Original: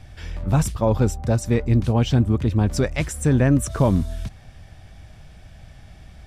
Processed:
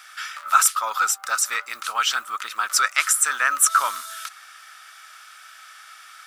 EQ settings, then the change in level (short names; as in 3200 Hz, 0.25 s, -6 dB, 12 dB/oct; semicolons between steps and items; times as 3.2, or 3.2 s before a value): resonant high-pass 1300 Hz, resonance Q 15; tilt +4.5 dB/oct; 0.0 dB